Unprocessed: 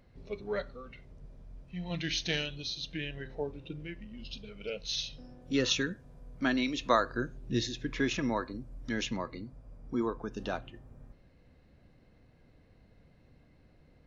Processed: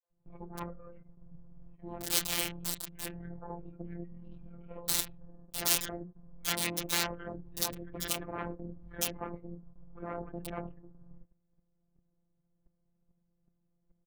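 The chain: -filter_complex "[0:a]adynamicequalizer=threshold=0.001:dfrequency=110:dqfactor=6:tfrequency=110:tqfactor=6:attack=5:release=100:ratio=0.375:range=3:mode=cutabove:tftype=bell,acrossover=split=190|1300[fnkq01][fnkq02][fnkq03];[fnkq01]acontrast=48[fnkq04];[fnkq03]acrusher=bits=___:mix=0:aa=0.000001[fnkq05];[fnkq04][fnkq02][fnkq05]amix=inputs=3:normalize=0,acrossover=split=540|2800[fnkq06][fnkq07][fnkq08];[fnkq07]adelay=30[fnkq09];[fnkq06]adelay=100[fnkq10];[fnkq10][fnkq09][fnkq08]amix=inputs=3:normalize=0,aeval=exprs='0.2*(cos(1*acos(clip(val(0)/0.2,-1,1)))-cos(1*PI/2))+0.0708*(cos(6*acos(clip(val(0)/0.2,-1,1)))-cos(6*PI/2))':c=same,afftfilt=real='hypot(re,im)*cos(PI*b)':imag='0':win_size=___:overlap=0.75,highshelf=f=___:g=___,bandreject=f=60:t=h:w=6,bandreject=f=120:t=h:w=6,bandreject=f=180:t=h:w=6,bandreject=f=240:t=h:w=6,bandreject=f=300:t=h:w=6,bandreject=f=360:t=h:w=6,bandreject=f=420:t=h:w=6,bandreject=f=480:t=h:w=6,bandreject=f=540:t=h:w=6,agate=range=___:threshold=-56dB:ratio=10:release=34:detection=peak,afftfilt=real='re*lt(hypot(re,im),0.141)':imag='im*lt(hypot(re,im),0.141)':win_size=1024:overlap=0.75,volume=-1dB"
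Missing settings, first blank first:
4, 1024, 3.2k, 8, -14dB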